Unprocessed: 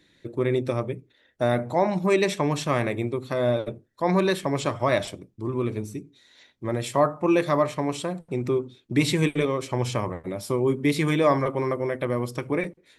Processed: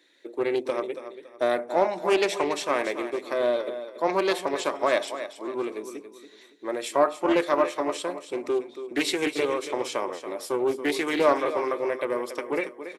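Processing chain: HPF 330 Hz 24 dB/oct; feedback echo 0.281 s, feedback 32%, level -11 dB; Doppler distortion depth 0.23 ms

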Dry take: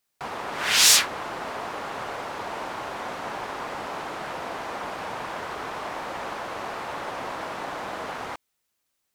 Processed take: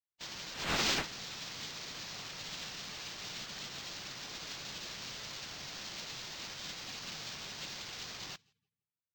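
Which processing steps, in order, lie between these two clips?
HPF 340 Hz 12 dB/oct; spectral gate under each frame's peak -25 dB weak; on a send: darkening echo 0.166 s, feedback 34%, low-pass 1800 Hz, level -19.5 dB; on the sum: decimation joined by straight lines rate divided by 4×; gain +11 dB

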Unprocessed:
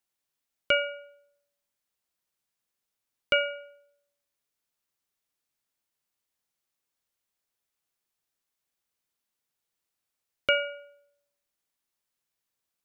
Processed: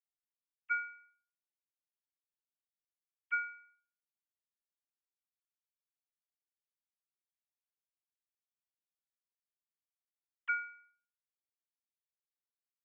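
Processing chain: sine-wave speech; elliptic band-stop 330–1000 Hz, stop band 40 dB; gain -6 dB

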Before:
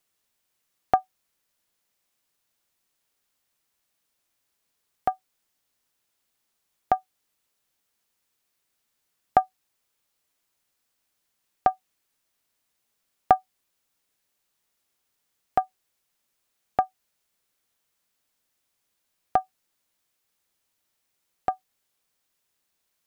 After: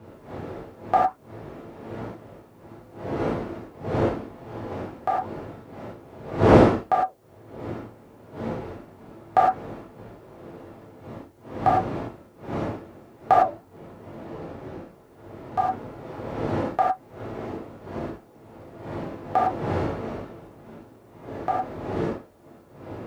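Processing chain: wind noise 420 Hz -33 dBFS; HPF 59 Hz; low shelf 140 Hz -8.5 dB; 13.37–15.58 compressor 2:1, threshold -42 dBFS, peak gain reduction 5.5 dB; flange 1.9 Hz, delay 3 ms, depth 6.7 ms, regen -84%; non-linear reverb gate 0.13 s flat, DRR -7 dB; gain +2.5 dB

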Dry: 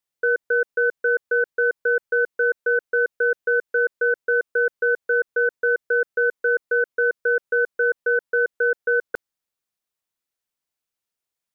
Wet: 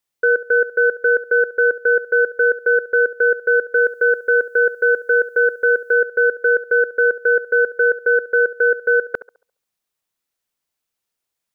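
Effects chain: 3.78–5.93 tone controls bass -1 dB, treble +11 dB; narrowing echo 69 ms, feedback 40%, band-pass 760 Hz, level -14 dB; gain +5 dB

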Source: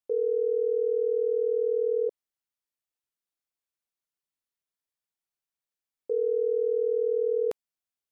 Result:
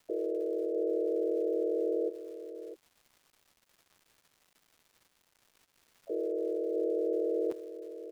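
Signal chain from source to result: echo 0.65 s -10.5 dB; crackle 240/s -43 dBFS; harmoniser -5 st -4 dB, +5 st -10 dB; gain -8.5 dB

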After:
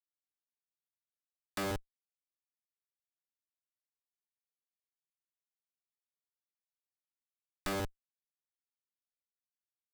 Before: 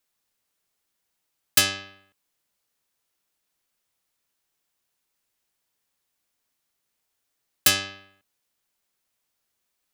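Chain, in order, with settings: treble ducked by the level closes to 820 Hz; weighting filter A; Schmitt trigger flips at -40.5 dBFS; gain +15 dB

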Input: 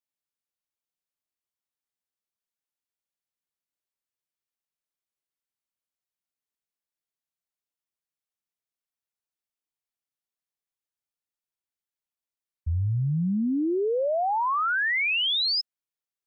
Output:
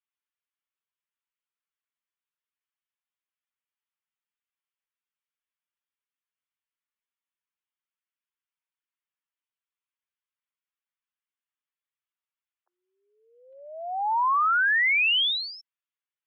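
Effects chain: mistuned SSB +270 Hz 600–3300 Hz; 13.4–14.89 crackle 15/s -53 dBFS; loudest bins only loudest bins 64; gain +3 dB

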